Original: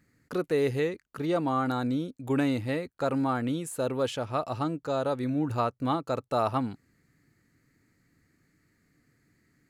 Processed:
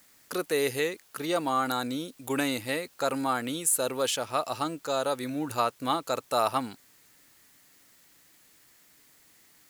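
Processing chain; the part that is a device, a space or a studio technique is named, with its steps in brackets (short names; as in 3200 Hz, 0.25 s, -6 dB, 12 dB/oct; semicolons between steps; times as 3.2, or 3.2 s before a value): turntable without a phono preamp (RIAA curve recording; white noise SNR 30 dB); gain +2 dB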